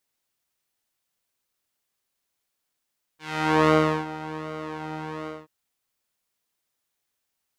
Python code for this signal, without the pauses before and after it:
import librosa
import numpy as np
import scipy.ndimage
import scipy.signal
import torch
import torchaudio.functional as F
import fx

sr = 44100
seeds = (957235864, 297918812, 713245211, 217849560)

y = fx.sub_patch_pwm(sr, seeds[0], note=51, wave2='saw', interval_st=0, detune_cents=19, level2_db=-9.0, sub_db=-16.0, noise_db=-30.0, kind='bandpass', cutoff_hz=670.0, q=0.76, env_oct=2.0, env_decay_s=0.39, env_sustain_pct=20, attack_ms=479.0, decay_s=0.38, sustain_db=-17, release_s=0.2, note_s=2.08, lfo_hz=1.3, width_pct=23, width_swing_pct=5)